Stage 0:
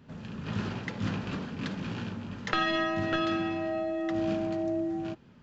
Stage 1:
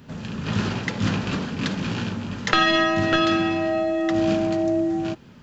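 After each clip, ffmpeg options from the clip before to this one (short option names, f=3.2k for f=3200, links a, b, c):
-af "highshelf=f=4.6k:g=8.5,volume=8.5dB"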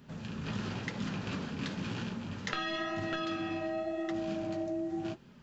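-af "acompressor=threshold=-23dB:ratio=6,flanger=delay=4.8:depth=9.9:regen=-53:speed=0.94:shape=sinusoidal,volume=-5dB"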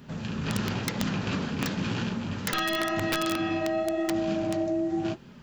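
-af "aeval=exprs='(mod(20*val(0)+1,2)-1)/20':c=same,volume=7.5dB"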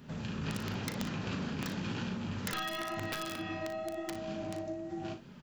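-filter_complex "[0:a]acompressor=threshold=-29dB:ratio=6,asplit=2[a][b];[b]aecho=0:1:38|59:0.316|0.251[c];[a][c]amix=inputs=2:normalize=0,volume=-4.5dB"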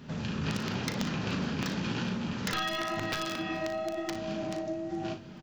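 -af "highshelf=f=7.5k:t=q:w=1.5:g=-6.5,bandreject=f=50:t=h:w=6,bandreject=f=100:t=h:w=6,aecho=1:1:426|852|1278:0.0944|0.0378|0.0151,volume=4.5dB"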